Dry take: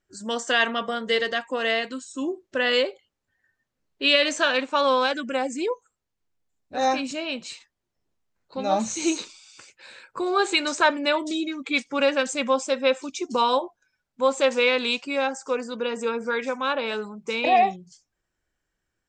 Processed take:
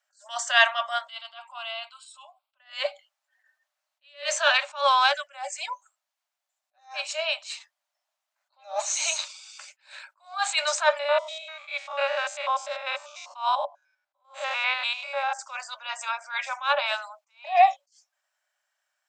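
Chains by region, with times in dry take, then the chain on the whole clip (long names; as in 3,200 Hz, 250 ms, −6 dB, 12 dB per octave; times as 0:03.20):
0:01.07–0:02.60: downward compressor 2 to 1, threshold −37 dBFS + phaser with its sweep stopped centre 1,800 Hz, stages 6
0:10.99–0:15.39: spectrum averaged block by block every 100 ms + low-pass filter 2,600 Hz 6 dB per octave
whole clip: Chebyshev high-pass filter 570 Hz, order 10; level that may rise only so fast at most 190 dB per second; level +4.5 dB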